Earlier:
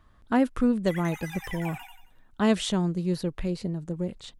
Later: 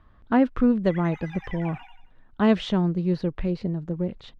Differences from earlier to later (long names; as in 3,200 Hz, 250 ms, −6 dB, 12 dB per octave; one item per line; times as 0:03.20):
speech +3.5 dB
master: add high-frequency loss of the air 240 metres